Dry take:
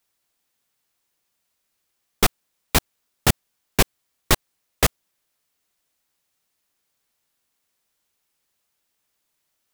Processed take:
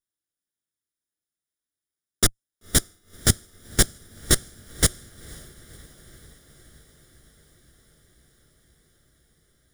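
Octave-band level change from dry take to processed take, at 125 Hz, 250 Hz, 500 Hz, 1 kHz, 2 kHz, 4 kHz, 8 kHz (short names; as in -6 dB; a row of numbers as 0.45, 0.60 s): 0.0, -1.5, -4.5, -10.0, -4.0, -0.5, +4.5 dB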